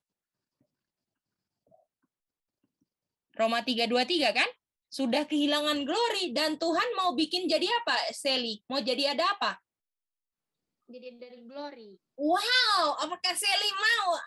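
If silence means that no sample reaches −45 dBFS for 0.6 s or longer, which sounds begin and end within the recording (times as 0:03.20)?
0:03.37–0:09.56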